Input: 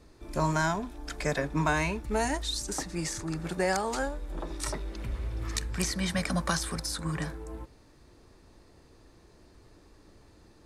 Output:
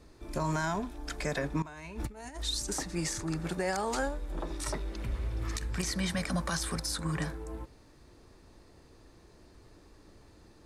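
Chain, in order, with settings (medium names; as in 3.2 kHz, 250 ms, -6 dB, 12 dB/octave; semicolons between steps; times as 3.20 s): peak limiter -22 dBFS, peak gain reduction 8.5 dB; 1.62–2.40 s: compressor with a negative ratio -39 dBFS, ratio -0.5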